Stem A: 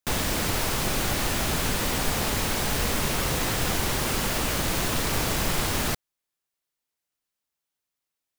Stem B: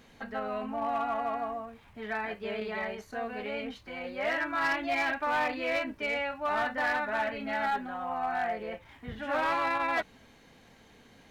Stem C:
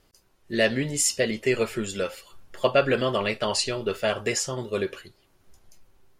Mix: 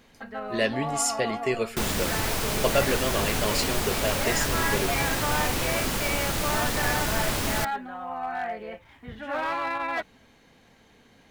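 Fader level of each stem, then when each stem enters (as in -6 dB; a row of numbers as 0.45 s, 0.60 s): -1.5 dB, 0.0 dB, -3.5 dB; 1.70 s, 0.00 s, 0.00 s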